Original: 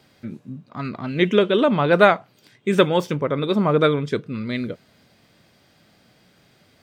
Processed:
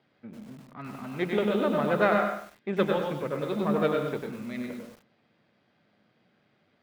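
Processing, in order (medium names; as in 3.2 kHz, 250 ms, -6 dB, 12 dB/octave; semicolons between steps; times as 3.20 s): partial rectifier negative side -7 dB; band-pass 120–2800 Hz; reverberation RT60 0.35 s, pre-delay 107 ms, DRR 5.5 dB; bit-crushed delay 97 ms, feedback 35%, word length 7-bit, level -4.5 dB; trim -8 dB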